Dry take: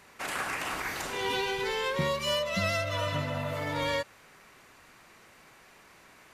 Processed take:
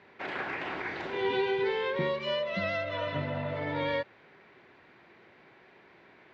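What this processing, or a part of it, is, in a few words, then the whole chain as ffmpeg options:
guitar cabinet: -filter_complex "[0:a]asettb=1/sr,asplit=3[s0][s1][s2];[s0]atrim=end=1.974[s3];[s1]atrim=start=1.97:end=3.16,asetpts=PTS-STARTPTS,afade=t=in:d=0.004:c=qsin,afade=t=out:st=1.186:d=0.004:c=qsin,highpass=f=170:p=1[s4];[s2]atrim=start=3.156[s5];[s3][s4]acrossfade=d=0.004:c1=hsin:c2=qsin[s6];[s6][s5]acrossfade=d=0.004:c1=qsin:c2=hsin,highpass=96,equalizer=f=370:t=q:w=4:g=7,equalizer=f=1200:t=q:w=4:g=-7,equalizer=f=2800:t=q:w=4:g=-5,lowpass=f=3400:w=0.5412,lowpass=f=3400:w=1.3066"

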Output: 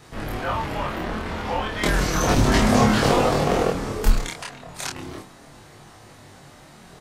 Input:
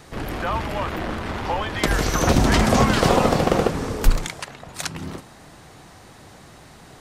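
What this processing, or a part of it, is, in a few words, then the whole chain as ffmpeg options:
double-tracked vocal: -filter_complex "[0:a]asplit=2[s0][s1];[s1]adelay=28,volume=0.794[s2];[s0][s2]amix=inputs=2:normalize=0,flanger=delay=19.5:depth=4.3:speed=0.34"

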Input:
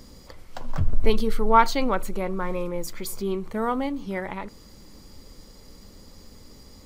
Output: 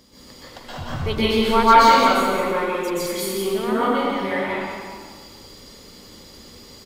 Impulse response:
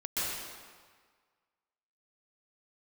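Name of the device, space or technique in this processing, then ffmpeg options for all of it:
PA in a hall: -filter_complex "[0:a]asettb=1/sr,asplit=3[s0][s1][s2];[s0]atrim=end=2.344[s3];[s1]atrim=start=2.34:end=2.75,asetpts=PTS-STARTPTS,afade=t=in:d=0.004:c=qsin,afade=t=out:st=0.406:d=0.004:c=qsin,highpass=f=230:w=0.5412,highpass=f=230:w=1.3066[s4];[s2]atrim=start=2.746[s5];[s3][s4]acrossfade=d=0.004:c1=hsin:c2=qsin[s6];[s6][s5]acrossfade=d=0.004:c1=qsin:c2=hsin,highpass=f=160:p=1,equalizer=f=3300:t=o:w=0.74:g=6.5,aecho=1:1:175:0.422[s7];[1:a]atrim=start_sample=2205[s8];[s7][s8]afir=irnorm=-1:irlink=0"

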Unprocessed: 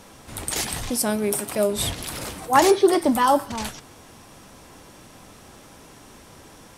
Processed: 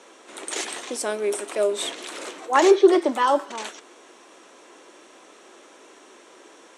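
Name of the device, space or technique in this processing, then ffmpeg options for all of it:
phone speaker on a table: -filter_complex "[0:a]asettb=1/sr,asplit=3[s0][s1][s2];[s0]atrim=end=2.314[s3];[s1]atrim=start=2.31:end=3.48,asetpts=PTS-STARTPTS,afade=t=in:d=0.004:c=qsin,afade=t=out:st=1.166:d=0.004:c=qsin,equalizer=f=9300:w=3.6:g=-9[s4];[s2]atrim=start=3.476[s5];[s3][s4]acrossfade=d=0.004:c1=hsin:c2=qsin[s6];[s6][s5]acrossfade=d=0.004:c1=qsin:c2=hsin,highpass=f=330:w=0.5412,highpass=f=330:w=1.3066,equalizer=f=360:t=q:w=4:g=5,equalizer=f=810:t=q:w=4:g=-4,equalizer=f=4900:t=q:w=4:g=-8,lowpass=f=8100:w=0.5412,lowpass=f=8100:w=1.3066"

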